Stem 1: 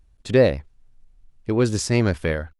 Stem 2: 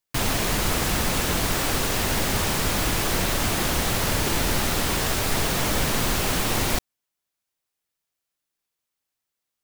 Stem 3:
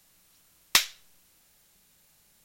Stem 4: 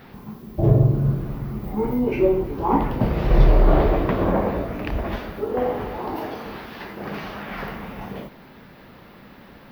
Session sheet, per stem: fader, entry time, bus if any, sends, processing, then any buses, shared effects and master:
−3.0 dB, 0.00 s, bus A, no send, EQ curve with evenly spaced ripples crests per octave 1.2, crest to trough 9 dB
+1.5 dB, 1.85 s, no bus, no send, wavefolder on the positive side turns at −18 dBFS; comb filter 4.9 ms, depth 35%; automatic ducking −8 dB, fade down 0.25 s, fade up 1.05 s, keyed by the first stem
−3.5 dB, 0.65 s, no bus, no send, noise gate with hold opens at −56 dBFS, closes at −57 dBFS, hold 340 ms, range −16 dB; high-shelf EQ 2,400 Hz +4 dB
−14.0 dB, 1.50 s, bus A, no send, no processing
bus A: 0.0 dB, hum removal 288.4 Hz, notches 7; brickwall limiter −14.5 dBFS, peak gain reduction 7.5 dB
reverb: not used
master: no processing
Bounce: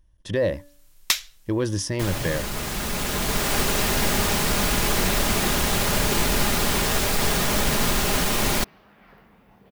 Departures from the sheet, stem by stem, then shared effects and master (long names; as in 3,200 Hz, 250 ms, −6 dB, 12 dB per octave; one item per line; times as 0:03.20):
stem 3: entry 0.65 s → 0.35 s
stem 4 −14.0 dB → −21.0 dB